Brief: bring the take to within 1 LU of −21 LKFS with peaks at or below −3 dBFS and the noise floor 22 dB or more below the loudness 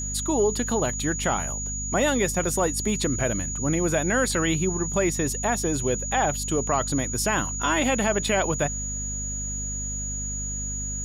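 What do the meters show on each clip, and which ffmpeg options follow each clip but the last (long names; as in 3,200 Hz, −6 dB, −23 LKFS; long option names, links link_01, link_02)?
mains hum 50 Hz; hum harmonics up to 250 Hz; level of the hum −31 dBFS; interfering tone 6,800 Hz; level of the tone −30 dBFS; integrated loudness −24.5 LKFS; sample peak −11.0 dBFS; target loudness −21.0 LKFS
→ -af "bandreject=frequency=50:width_type=h:width=4,bandreject=frequency=100:width_type=h:width=4,bandreject=frequency=150:width_type=h:width=4,bandreject=frequency=200:width_type=h:width=4,bandreject=frequency=250:width_type=h:width=4"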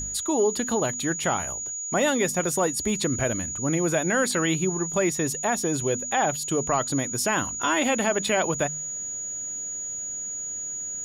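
mains hum none found; interfering tone 6,800 Hz; level of the tone −30 dBFS
→ -af "bandreject=frequency=6800:width=30"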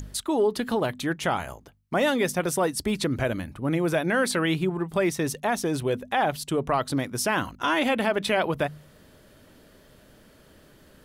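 interfering tone none found; integrated loudness −26.0 LKFS; sample peak −11.5 dBFS; target loudness −21.0 LKFS
→ -af "volume=5dB"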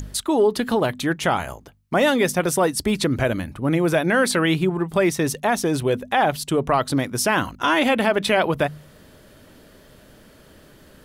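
integrated loudness −21.0 LKFS; sample peak −6.5 dBFS; background noise floor −50 dBFS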